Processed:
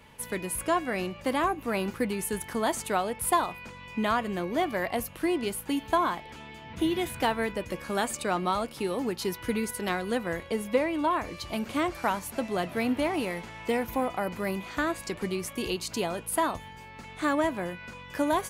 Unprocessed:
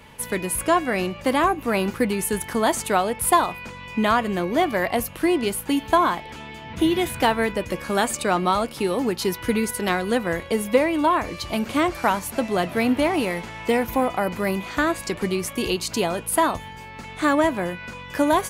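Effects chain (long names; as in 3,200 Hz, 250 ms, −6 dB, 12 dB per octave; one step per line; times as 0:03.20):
0:10.50–0:11.11: high-shelf EQ 8,600 Hz −5.5 dB
level −7 dB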